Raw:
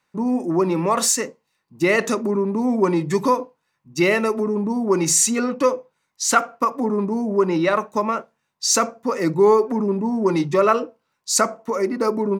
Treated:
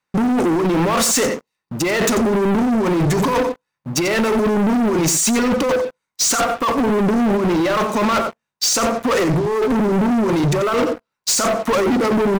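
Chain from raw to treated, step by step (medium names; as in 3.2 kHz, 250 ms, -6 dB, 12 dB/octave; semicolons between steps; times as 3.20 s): compressor with a negative ratio -25 dBFS, ratio -1; delay 89 ms -12.5 dB; waveshaping leveller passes 5; trim -3 dB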